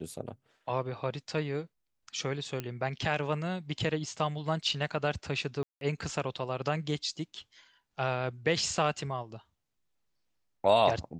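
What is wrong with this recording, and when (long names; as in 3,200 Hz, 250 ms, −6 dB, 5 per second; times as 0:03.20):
0:02.60: click −20 dBFS
0:05.63–0:05.81: drop-out 182 ms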